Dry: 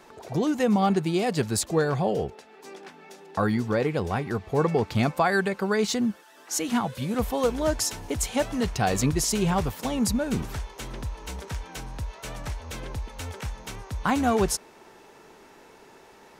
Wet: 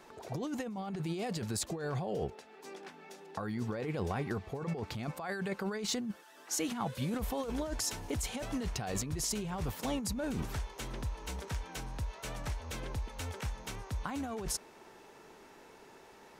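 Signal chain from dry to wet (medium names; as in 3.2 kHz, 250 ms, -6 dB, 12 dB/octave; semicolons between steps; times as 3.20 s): compressor with a negative ratio -28 dBFS, ratio -1; trim -7.5 dB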